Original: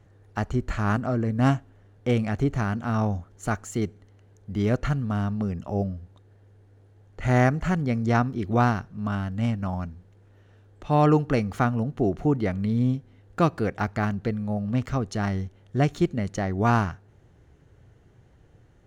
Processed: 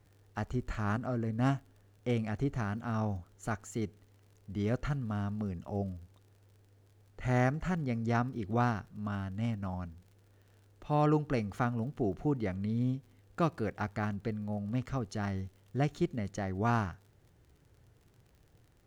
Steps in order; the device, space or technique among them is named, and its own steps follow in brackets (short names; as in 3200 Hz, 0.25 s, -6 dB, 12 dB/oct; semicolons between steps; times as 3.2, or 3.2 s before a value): vinyl LP (crackle 55/s -44 dBFS; pink noise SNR 43 dB); gain -8.5 dB